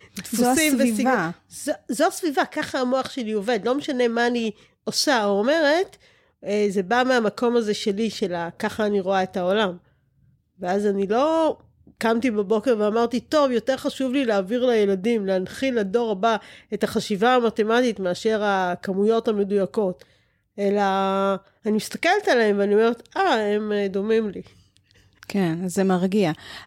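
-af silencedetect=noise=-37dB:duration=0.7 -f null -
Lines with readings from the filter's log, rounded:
silence_start: 9.77
silence_end: 10.61 | silence_duration: 0.84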